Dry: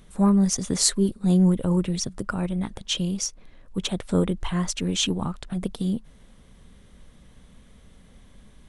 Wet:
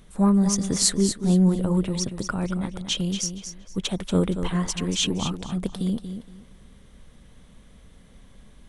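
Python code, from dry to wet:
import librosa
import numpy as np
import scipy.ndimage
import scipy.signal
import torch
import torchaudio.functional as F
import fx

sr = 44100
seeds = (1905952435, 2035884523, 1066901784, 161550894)

y = fx.echo_feedback(x, sr, ms=234, feedback_pct=23, wet_db=-9)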